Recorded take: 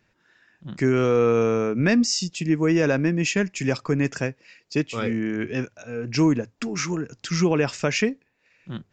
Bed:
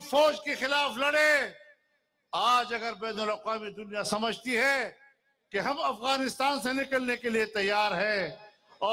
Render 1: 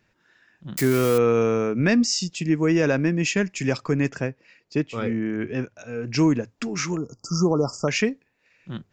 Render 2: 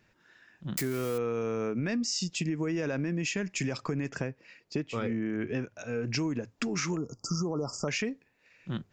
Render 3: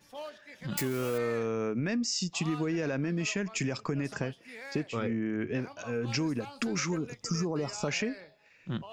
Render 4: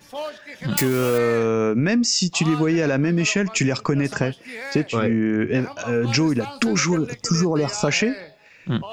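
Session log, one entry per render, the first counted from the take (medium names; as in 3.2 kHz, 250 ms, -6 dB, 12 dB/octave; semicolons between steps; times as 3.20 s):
0.77–1.18 s: zero-crossing glitches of -18.5 dBFS; 4.09–5.77 s: treble shelf 2.8 kHz -9.5 dB; 6.97–7.88 s: brick-wall FIR band-stop 1.4–4.6 kHz
peak limiter -16 dBFS, peak gain reduction 6 dB; compression, threshold -28 dBFS, peak gain reduction 9 dB
add bed -19 dB
trim +11.5 dB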